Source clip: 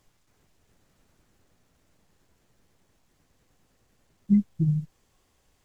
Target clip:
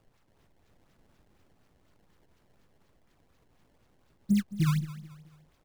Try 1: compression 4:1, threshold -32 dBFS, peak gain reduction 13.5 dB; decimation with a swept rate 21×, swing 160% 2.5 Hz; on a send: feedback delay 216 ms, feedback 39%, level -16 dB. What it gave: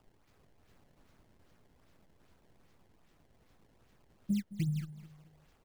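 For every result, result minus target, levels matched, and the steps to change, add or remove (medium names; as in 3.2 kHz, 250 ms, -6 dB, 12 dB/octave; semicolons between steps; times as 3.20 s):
compression: peak gain reduction +7.5 dB; decimation with a swept rate: distortion -4 dB
change: compression 4:1, threshold -22 dBFS, peak gain reduction 6 dB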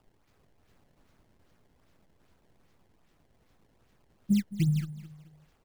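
decimation with a swept rate: distortion -5 dB
change: decimation with a swept rate 21×, swing 160% 4.1 Hz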